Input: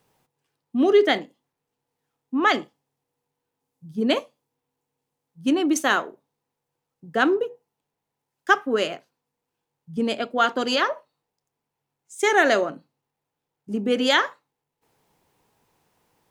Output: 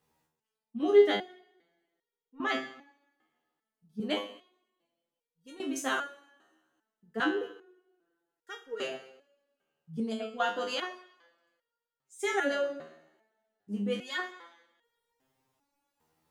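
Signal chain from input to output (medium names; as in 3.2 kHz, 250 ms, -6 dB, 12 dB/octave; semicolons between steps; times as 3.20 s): two-slope reverb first 0.81 s, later 2.2 s, from -25 dB, DRR 7.5 dB; resonator arpeggio 2.5 Hz 79–470 Hz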